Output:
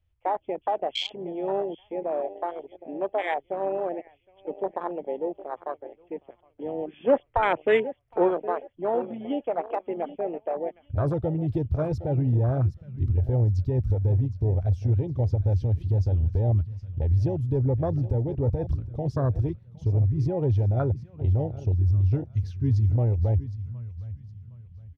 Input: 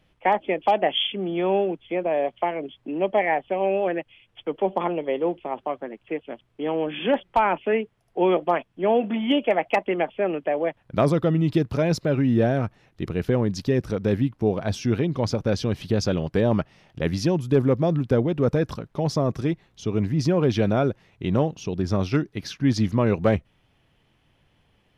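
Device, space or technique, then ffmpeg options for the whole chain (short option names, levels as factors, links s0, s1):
car stereo with a boomy subwoofer: -filter_complex "[0:a]lowshelf=f=130:t=q:w=3:g=13.5,alimiter=limit=0.237:level=0:latency=1:release=89,asplit=3[s0][s1][s2];[s0]afade=t=out:st=7.06:d=0.02[s3];[s1]equalizer=f=125:t=o:w=1:g=5,equalizer=f=250:t=o:w=1:g=4,equalizer=f=500:t=o:w=1:g=7,equalizer=f=2000:t=o:w=1:g=9,afade=t=in:st=7.06:d=0.02,afade=t=out:st=8.27:d=0.02[s4];[s2]afade=t=in:st=8.27:d=0.02[s5];[s3][s4][s5]amix=inputs=3:normalize=0,aecho=1:1:764|1528|2292:0.224|0.0784|0.0274,afwtdn=0.0708,volume=0.631"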